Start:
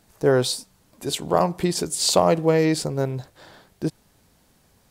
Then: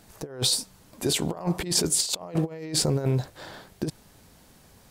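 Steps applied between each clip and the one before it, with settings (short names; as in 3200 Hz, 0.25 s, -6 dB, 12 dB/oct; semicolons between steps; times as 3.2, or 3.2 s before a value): negative-ratio compressor -26 dBFS, ratio -0.5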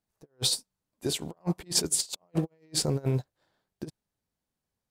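upward expander 2.5:1, over -42 dBFS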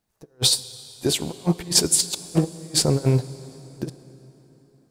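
plate-style reverb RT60 4 s, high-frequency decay 0.75×, DRR 14.5 dB; gain +8 dB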